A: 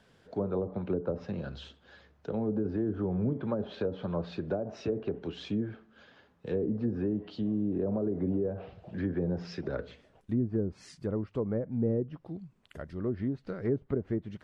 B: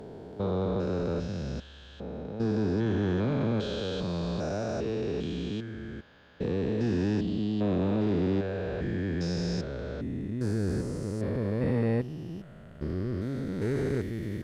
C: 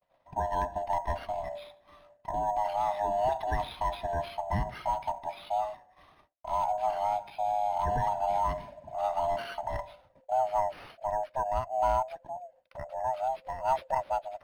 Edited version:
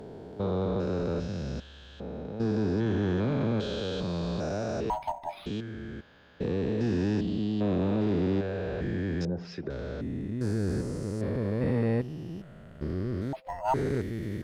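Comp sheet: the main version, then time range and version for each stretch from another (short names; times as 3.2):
B
4.9–5.46 from C
9.25–9.7 from A
13.33–13.74 from C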